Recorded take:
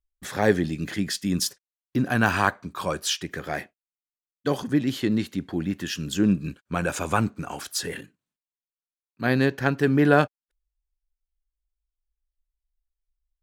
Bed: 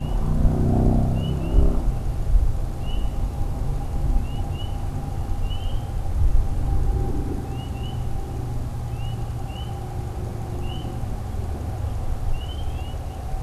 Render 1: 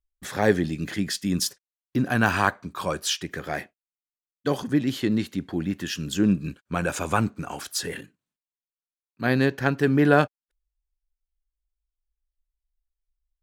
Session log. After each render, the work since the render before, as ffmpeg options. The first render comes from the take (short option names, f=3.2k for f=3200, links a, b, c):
-af anull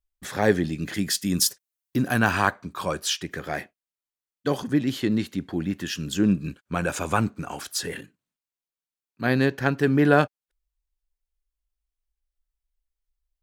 -filter_complex "[0:a]asettb=1/sr,asplit=3[a][b][c];[a]atrim=end=0.944[d];[b]atrim=start=0.94:end=2.19,asetpts=PTS-STARTPTS,afade=t=in:d=0.004:c=qsin,afade=t=out:st=1.246:d=0.004:c=qsin,highshelf=f=6.8k:g=10.5[e];[c]atrim=start=2.186[f];[d][e]acrossfade=d=0.004:c1=hsin:c2=qsin[g];[g][f]acrossfade=d=0.004:c1=qsin:c2=hsin"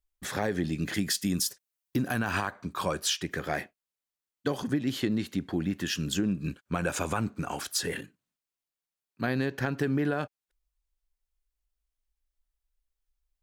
-af "alimiter=limit=-13dB:level=0:latency=1:release=125,acompressor=threshold=-24dB:ratio=6"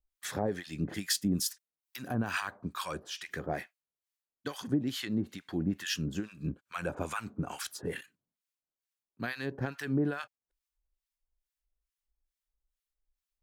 -filter_complex "[0:a]acrossover=split=1000[a][b];[a]aeval=exprs='val(0)*(1-1/2+1/2*cos(2*PI*2.3*n/s))':c=same[c];[b]aeval=exprs='val(0)*(1-1/2-1/2*cos(2*PI*2.3*n/s))':c=same[d];[c][d]amix=inputs=2:normalize=0"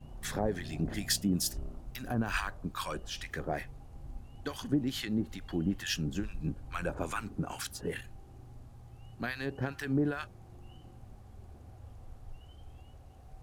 -filter_complex "[1:a]volume=-23dB[a];[0:a][a]amix=inputs=2:normalize=0"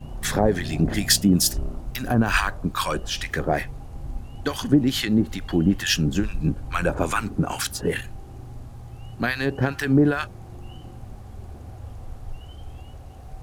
-af "volume=12dB"